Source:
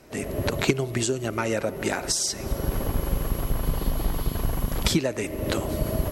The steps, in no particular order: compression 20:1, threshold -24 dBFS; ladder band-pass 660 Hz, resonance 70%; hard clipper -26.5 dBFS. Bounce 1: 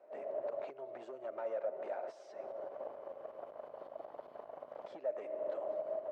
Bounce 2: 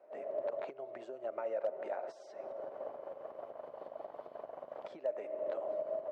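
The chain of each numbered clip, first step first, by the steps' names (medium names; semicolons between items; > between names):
compression > hard clipper > ladder band-pass; compression > ladder band-pass > hard clipper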